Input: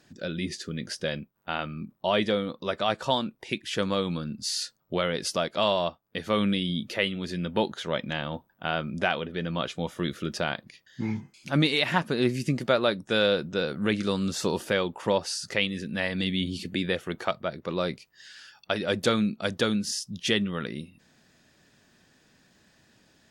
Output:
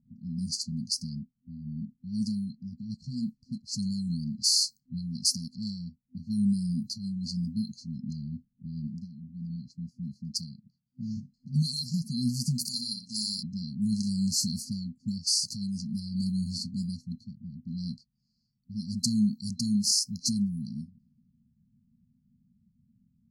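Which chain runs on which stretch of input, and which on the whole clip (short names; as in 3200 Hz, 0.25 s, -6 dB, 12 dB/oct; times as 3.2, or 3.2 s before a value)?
8.87–11.17 HPF 180 Hz 6 dB/oct + bell 270 Hz -13 dB 0.33 oct
12.59–13.43 tilt +4.5 dB/oct + flutter echo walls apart 10.4 m, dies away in 0.6 s
whole clip: FFT band-reject 250–4100 Hz; low shelf 290 Hz -8.5 dB; low-pass opened by the level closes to 310 Hz, open at -35 dBFS; gain +7 dB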